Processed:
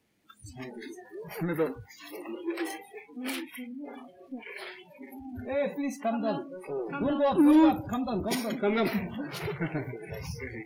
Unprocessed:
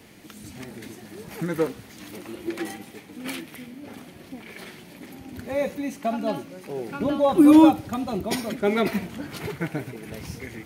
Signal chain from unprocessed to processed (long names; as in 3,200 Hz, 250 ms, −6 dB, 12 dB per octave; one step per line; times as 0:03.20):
power curve on the samples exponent 0.7
noise reduction from a noise print of the clip's start 27 dB
level −8.5 dB